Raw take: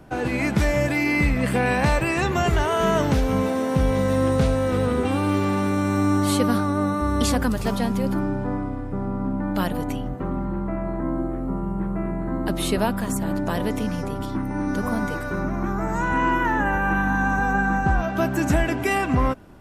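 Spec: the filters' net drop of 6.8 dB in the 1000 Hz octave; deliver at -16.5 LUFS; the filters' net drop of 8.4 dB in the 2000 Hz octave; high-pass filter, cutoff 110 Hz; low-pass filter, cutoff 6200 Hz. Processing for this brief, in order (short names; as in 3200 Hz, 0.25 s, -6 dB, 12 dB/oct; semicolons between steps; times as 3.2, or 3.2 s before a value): HPF 110 Hz; LPF 6200 Hz; bell 1000 Hz -7 dB; bell 2000 Hz -8.5 dB; gain +9.5 dB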